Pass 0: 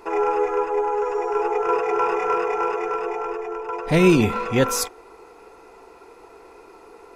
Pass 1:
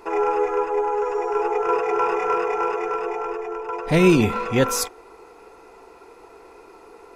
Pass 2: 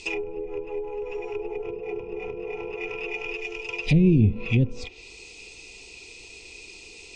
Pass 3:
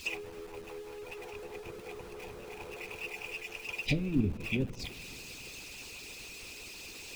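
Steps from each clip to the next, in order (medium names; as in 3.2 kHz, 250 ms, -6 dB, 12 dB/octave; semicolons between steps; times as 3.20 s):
no audible change
steep low-pass 9.1 kHz 96 dB/octave; low-pass that closes with the level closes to 380 Hz, closed at -17 dBFS; FFT filter 110 Hz 0 dB, 1.5 kHz -28 dB, 2.5 kHz +10 dB; trim +7 dB
jump at every zero crossing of -36 dBFS; two-slope reverb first 0.27 s, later 3.2 s, from -22 dB, DRR 9 dB; harmonic-percussive split harmonic -16 dB; trim -3 dB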